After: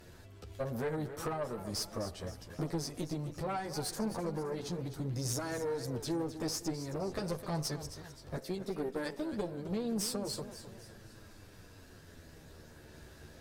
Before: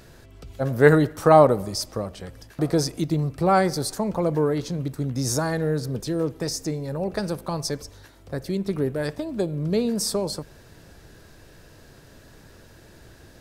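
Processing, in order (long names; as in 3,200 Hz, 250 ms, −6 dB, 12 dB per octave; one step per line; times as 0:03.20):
0:08.37–0:09.33: high-pass filter 190 Hz 24 dB per octave
downward compressor 16 to 1, threshold −25 dBFS, peak gain reduction 17.5 dB
multi-voice chorus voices 2, 0.19 Hz, delay 11 ms, depth 2.4 ms
tube saturation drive 28 dB, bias 0.6
feedback echo with a swinging delay time 262 ms, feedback 46%, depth 142 cents, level −12 dB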